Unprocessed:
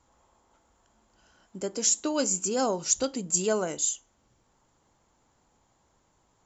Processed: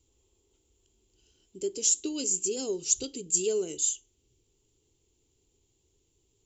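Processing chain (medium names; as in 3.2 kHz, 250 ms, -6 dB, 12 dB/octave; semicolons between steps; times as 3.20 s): FFT filter 100 Hz 0 dB, 210 Hz -12 dB, 410 Hz +4 dB, 580 Hz -19 dB, 1.2 kHz -23 dB, 1.7 kHz -21 dB, 2.8 kHz 0 dB, 5.4 kHz -3 dB, 7.6 kHz +1 dB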